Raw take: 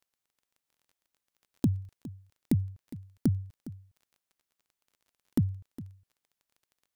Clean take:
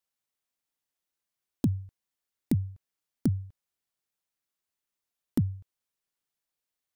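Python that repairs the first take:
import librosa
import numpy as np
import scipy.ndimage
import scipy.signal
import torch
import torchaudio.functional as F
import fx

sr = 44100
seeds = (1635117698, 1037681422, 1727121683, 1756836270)

y = fx.fix_declick_ar(x, sr, threshold=6.5)
y = fx.fix_echo_inverse(y, sr, delay_ms=410, level_db=-16.5)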